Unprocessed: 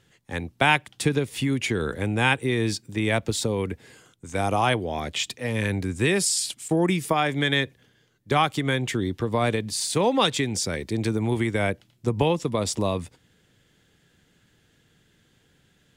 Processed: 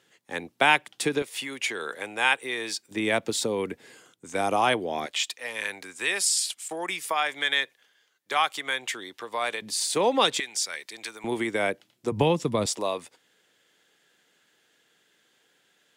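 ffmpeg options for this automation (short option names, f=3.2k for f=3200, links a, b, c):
-af "asetnsamples=n=441:p=0,asendcmd='1.22 highpass f 650;2.91 highpass f 250;5.06 highpass f 820;9.62 highpass f 320;10.4 highpass f 1200;11.24 highpass f 310;12.12 highpass f 110;12.66 highpass f 470',highpass=310"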